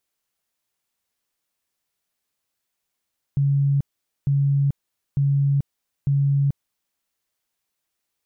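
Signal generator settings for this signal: tone bursts 140 Hz, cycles 61, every 0.90 s, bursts 4, -16 dBFS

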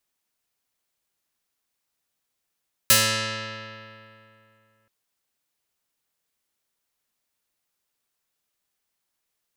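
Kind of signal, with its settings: plucked string A2, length 1.98 s, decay 2.71 s, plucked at 0.29, medium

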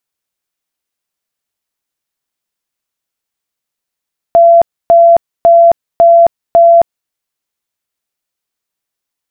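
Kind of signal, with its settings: tone bursts 678 Hz, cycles 181, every 0.55 s, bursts 5, -1.5 dBFS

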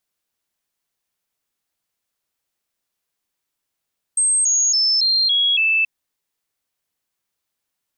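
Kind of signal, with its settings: stepped sine 8370 Hz down, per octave 3, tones 6, 0.28 s, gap 0.00 s -14 dBFS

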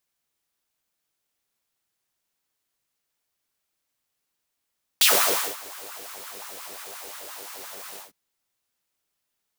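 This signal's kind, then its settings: synth patch with filter wobble C2, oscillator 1 triangle, interval +7 st, oscillator 2 level -6 dB, noise -1 dB, filter highpass, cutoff 350 Hz, Q 3.1, filter envelope 3 oct, filter decay 0.12 s, filter sustain 35%, attack 2.3 ms, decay 0.55 s, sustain -22.5 dB, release 0.15 s, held 2.96 s, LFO 5.7 Hz, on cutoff 0.8 oct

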